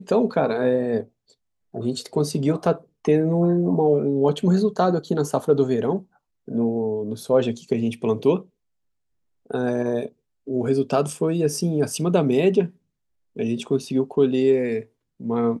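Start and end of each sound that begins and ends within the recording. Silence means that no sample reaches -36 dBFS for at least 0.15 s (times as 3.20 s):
1.74–2.78 s
3.05–6.01 s
6.48–8.42 s
9.51–10.08 s
10.47–12.69 s
13.37–14.83 s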